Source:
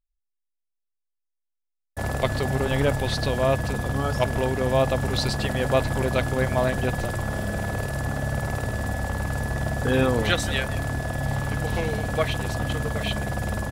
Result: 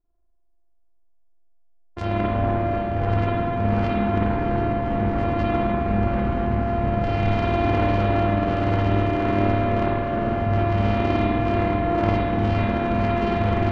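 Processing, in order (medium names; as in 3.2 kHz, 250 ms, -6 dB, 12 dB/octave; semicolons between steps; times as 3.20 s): sorted samples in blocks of 128 samples; low-pass that closes with the level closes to 1.8 kHz, closed at -21 dBFS; reverb removal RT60 1.8 s; level-controlled noise filter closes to 870 Hz, open at -25.5 dBFS; compressor with a negative ratio -32 dBFS, ratio -1; feedback echo behind a low-pass 245 ms, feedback 82%, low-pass 3.3 kHz, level -8 dB; spring tank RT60 1.3 s, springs 39/49 ms, chirp 25 ms, DRR -8 dB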